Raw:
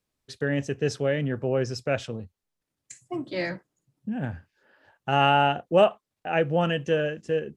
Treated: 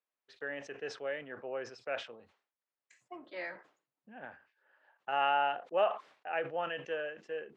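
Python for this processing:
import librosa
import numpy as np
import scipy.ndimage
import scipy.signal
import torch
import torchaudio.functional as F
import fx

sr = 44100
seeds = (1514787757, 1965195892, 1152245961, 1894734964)

y = fx.bandpass_edges(x, sr, low_hz=670.0, high_hz=2400.0)
y = fx.sustainer(y, sr, db_per_s=140.0)
y = y * 10.0 ** (-6.5 / 20.0)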